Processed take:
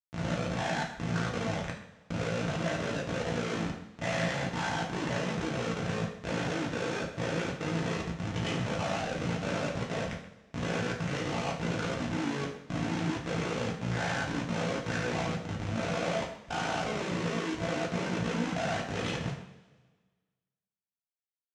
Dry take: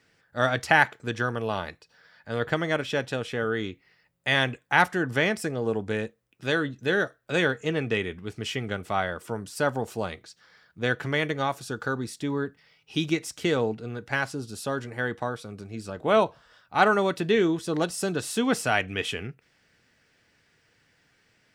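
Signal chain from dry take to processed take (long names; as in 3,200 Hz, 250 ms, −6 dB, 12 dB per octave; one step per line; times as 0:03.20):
peak hold with a rise ahead of every peak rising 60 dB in 0.88 s
reverb reduction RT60 1.3 s
high-shelf EQ 2,400 Hz −10.5 dB
downward compressor 12 to 1, threshold −36 dBFS, peak gain reduction 22 dB
transient designer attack −7 dB, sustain −2 dB
automatic gain control gain up to 8 dB
comparator with hysteresis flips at −35.5 dBFS
pitch vibrato 0.33 Hz 5.3 cents
amplitude modulation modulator 56 Hz, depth 85%
loudspeaker in its box 110–6,700 Hz, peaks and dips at 190 Hz +6 dB, 360 Hz −8 dB, 940 Hz −3 dB, 4,600 Hz −4 dB
far-end echo of a speakerphone 130 ms, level −14 dB
coupled-rooms reverb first 0.46 s, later 1.5 s, from −16 dB, DRR −2 dB
level +4.5 dB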